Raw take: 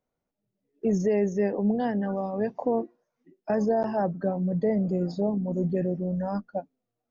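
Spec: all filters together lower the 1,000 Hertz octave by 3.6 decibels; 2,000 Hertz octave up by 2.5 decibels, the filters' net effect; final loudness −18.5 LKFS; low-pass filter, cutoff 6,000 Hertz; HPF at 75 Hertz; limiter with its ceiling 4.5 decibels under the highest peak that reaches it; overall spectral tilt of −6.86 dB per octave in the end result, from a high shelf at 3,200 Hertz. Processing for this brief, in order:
high-pass filter 75 Hz
low-pass filter 6,000 Hz
parametric band 1,000 Hz −6.5 dB
parametric band 2,000 Hz +6 dB
high-shelf EQ 3,200 Hz −3 dB
level +11 dB
brickwall limiter −9 dBFS

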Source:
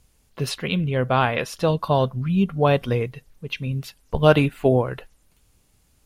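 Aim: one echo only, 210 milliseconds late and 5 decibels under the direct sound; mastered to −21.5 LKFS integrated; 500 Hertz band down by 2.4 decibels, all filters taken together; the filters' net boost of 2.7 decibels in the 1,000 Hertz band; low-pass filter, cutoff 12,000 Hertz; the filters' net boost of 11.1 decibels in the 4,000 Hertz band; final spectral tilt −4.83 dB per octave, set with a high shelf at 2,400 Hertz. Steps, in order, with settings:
low-pass filter 12,000 Hz
parametric band 500 Hz −4.5 dB
parametric band 1,000 Hz +3.5 dB
high-shelf EQ 2,400 Hz +6 dB
parametric band 4,000 Hz +9 dB
single-tap delay 210 ms −5 dB
level −2 dB

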